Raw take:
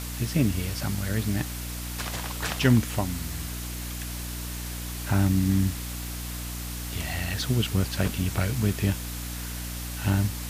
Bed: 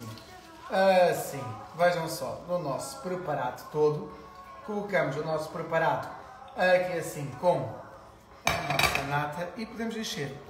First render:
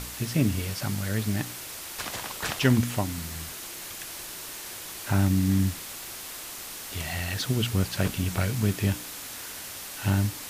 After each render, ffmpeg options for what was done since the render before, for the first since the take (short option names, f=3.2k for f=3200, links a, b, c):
-af "bandreject=f=60:t=h:w=4,bandreject=f=120:t=h:w=4,bandreject=f=180:t=h:w=4,bandreject=f=240:t=h:w=4,bandreject=f=300:t=h:w=4"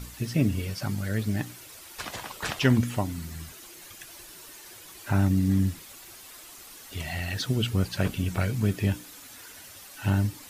-af "afftdn=nr=10:nf=-39"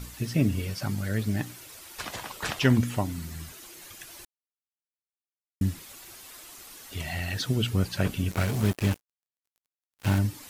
-filter_complex "[0:a]asettb=1/sr,asplit=3[a][b][c];[a]atrim=end=8.314[d];[b]atrim=start=8.31:end=10.19,asetpts=PTS-STARTPTS,afade=t=in:d=0.004:c=qsin,afade=t=out:st=1.876:d=0.004:c=qsin,acrusher=bits=4:mix=0:aa=0.5[e];[c]atrim=start=10.186[f];[d][e]acrossfade=d=0.004:c1=hsin:c2=qsin[g];[g][f]acrossfade=d=0.004:c1=qsin:c2=hsin,asplit=3[h][i][j];[h]atrim=end=4.25,asetpts=PTS-STARTPTS,afade=t=out:st=4.246:d=0.004:c=hsin[k];[i]atrim=start=4.25:end=5.61,asetpts=PTS-STARTPTS,volume=0[l];[j]atrim=start=5.61,asetpts=PTS-STARTPTS,afade=t=in:d=0.004:c=hsin[m];[k][l][m]concat=n=3:v=0:a=1"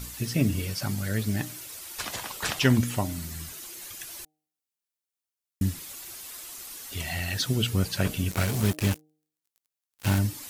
-af "highshelf=f=3.9k:g=7,bandreject=f=153.8:t=h:w=4,bandreject=f=307.6:t=h:w=4,bandreject=f=461.4:t=h:w=4,bandreject=f=615.2:t=h:w=4,bandreject=f=769:t=h:w=4"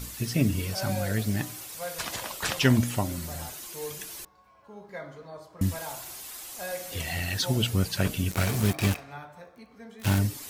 -filter_complex "[1:a]volume=-13dB[a];[0:a][a]amix=inputs=2:normalize=0"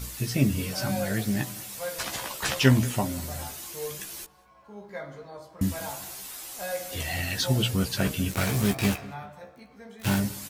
-filter_complex "[0:a]asplit=2[a][b];[b]adelay=15,volume=-5dB[c];[a][c]amix=inputs=2:normalize=0,asplit=2[d][e];[e]adelay=193,lowpass=f=2.9k:p=1,volume=-20dB,asplit=2[f][g];[g]adelay=193,lowpass=f=2.9k:p=1,volume=0.4,asplit=2[h][i];[i]adelay=193,lowpass=f=2.9k:p=1,volume=0.4[j];[d][f][h][j]amix=inputs=4:normalize=0"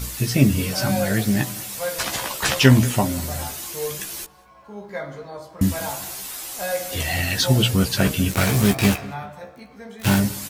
-af "volume=7dB,alimiter=limit=-2dB:level=0:latency=1"